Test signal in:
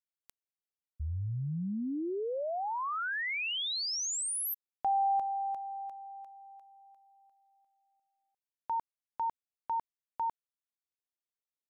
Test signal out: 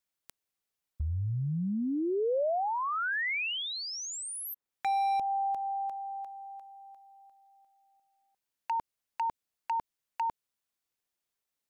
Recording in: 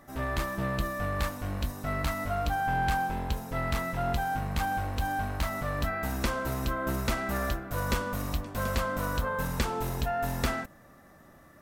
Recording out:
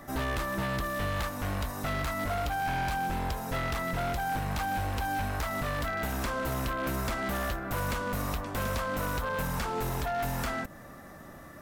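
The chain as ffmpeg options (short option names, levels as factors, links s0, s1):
-filter_complex "[0:a]acrossover=split=590|2100[s0][s1][s2];[s0]acompressor=threshold=0.0141:ratio=8[s3];[s1]acompressor=threshold=0.00891:ratio=5[s4];[s2]acompressor=threshold=0.00398:ratio=4[s5];[s3][s4][s5]amix=inputs=3:normalize=0,aeval=exprs='0.0237*(abs(mod(val(0)/0.0237+3,4)-2)-1)':c=same,volume=2.37"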